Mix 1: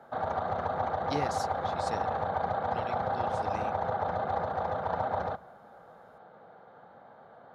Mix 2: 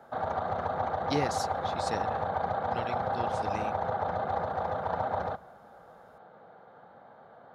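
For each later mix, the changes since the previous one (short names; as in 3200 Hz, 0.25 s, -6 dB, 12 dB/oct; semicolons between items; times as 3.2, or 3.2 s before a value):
speech +4.0 dB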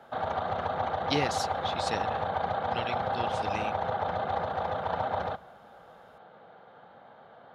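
master: add bell 3000 Hz +10 dB 0.93 oct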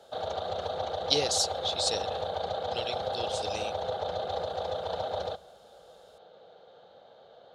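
master: add ten-band EQ 125 Hz -6 dB, 250 Hz -9 dB, 500 Hz +7 dB, 1000 Hz -9 dB, 2000 Hz -10 dB, 4000 Hz +9 dB, 8000 Hz +11 dB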